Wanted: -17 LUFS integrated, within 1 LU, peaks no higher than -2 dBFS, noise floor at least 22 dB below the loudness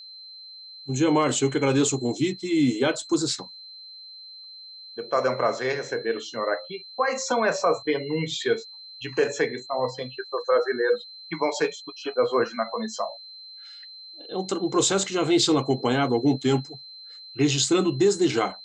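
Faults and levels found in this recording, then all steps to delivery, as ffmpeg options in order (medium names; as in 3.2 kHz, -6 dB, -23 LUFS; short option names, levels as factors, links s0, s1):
steady tone 4.1 kHz; tone level -41 dBFS; loudness -24.5 LUFS; peak level -11.0 dBFS; loudness target -17.0 LUFS
-> -af "bandreject=f=4100:w=30"
-af "volume=2.37"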